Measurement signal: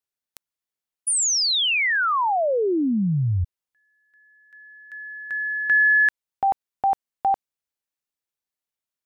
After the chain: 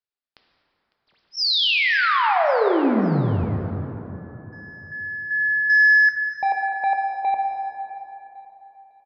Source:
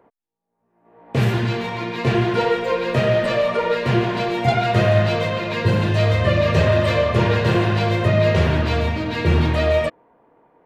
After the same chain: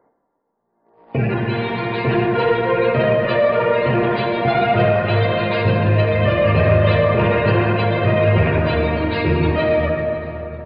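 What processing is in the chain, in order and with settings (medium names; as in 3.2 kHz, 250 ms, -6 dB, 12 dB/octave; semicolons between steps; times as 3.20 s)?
rattle on loud lows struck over -16 dBFS, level -18 dBFS; spectral gate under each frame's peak -25 dB strong; peaking EQ 87 Hz -3.5 dB 2.3 oct; waveshaping leveller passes 1; on a send: feedback delay 553 ms, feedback 40%, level -19.5 dB; on the sum: plate-style reverb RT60 3.6 s, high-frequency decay 0.45×, DRR 1.5 dB; resampled via 11.025 kHz; trim -2 dB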